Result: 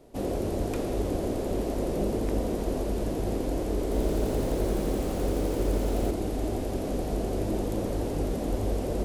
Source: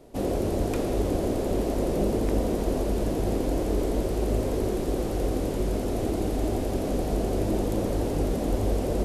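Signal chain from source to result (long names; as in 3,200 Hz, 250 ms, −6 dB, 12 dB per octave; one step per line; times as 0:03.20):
0:03.82–0:06.11: feedback echo at a low word length 85 ms, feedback 80%, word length 8 bits, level −4 dB
level −3 dB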